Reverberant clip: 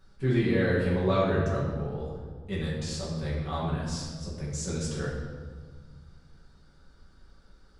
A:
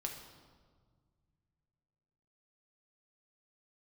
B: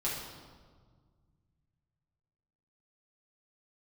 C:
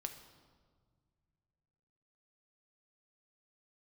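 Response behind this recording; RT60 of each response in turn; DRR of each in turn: B; 1.7, 1.7, 1.8 seconds; 1.5, −7.0, 6.0 decibels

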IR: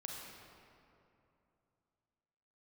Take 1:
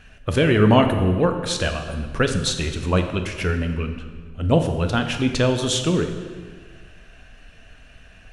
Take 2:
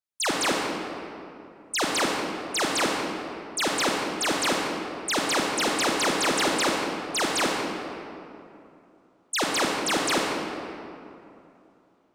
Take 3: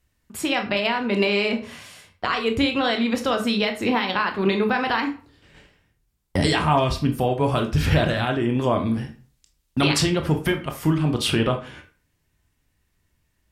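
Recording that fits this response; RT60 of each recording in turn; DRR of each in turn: 2; 1.7, 2.8, 0.40 seconds; 5.5, −1.5, 5.0 decibels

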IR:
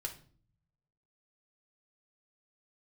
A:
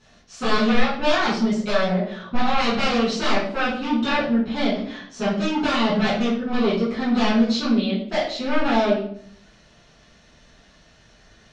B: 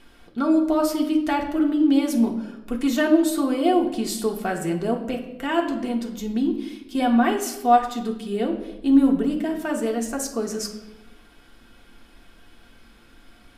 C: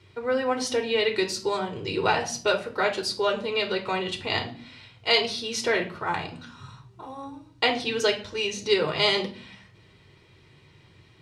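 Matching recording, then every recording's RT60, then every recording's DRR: C; 0.65, 1.0, 0.45 seconds; −10.0, 1.0, 2.0 decibels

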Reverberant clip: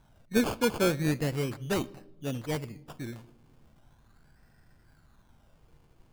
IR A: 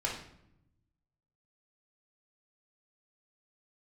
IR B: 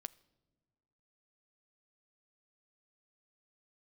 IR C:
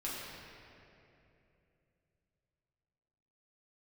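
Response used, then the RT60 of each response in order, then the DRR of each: B; 0.75 s, non-exponential decay, 2.9 s; −4.5, 16.5, −8.0 decibels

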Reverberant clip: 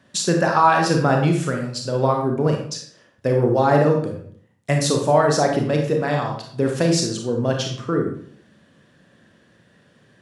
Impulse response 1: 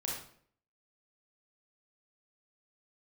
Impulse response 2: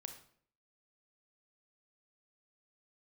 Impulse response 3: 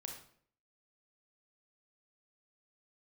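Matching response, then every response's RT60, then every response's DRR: 3; 0.60, 0.60, 0.60 seconds; −3.5, 6.0, 1.5 decibels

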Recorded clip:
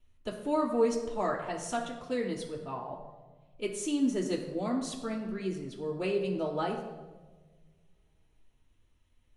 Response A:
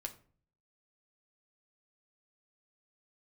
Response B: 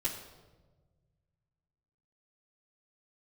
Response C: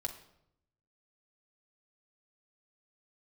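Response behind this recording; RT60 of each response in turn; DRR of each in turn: B; 0.45, 1.3, 0.75 seconds; 2.5, −8.5, 0.5 decibels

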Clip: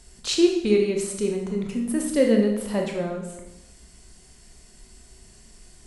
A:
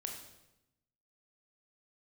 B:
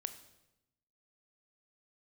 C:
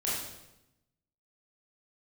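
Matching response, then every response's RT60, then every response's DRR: A; 0.90, 0.90, 0.90 seconds; 1.5, 9.5, −8.0 decibels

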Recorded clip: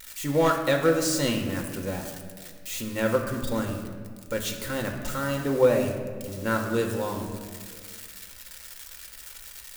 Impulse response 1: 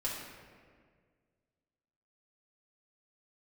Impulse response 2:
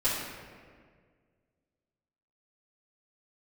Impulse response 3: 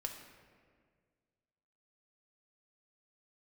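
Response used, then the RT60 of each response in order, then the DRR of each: 3; 1.8, 1.8, 1.8 seconds; −6.5, −12.5, 2.5 decibels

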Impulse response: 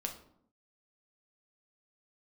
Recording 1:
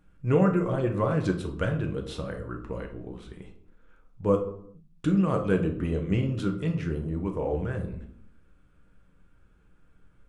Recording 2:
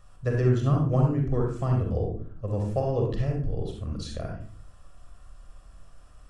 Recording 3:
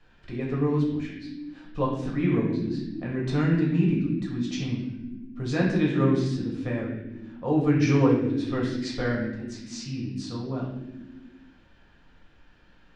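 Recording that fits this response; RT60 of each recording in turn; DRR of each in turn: 1; 0.70 s, 0.45 s, non-exponential decay; 3.0, 0.0, −3.5 decibels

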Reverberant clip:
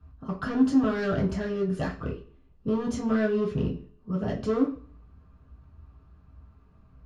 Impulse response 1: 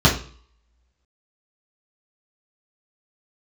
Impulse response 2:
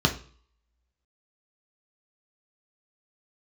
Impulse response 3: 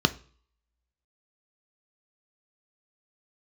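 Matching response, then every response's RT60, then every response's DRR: 1; 0.45, 0.45, 0.45 seconds; −6.0, 2.0, 10.5 decibels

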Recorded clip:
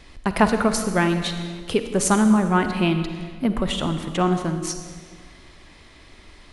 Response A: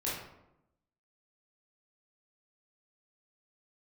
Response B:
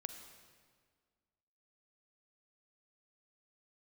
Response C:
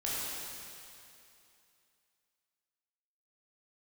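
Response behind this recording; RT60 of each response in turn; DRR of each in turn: B; 0.85, 1.8, 2.7 seconds; −8.0, 7.5, −8.0 decibels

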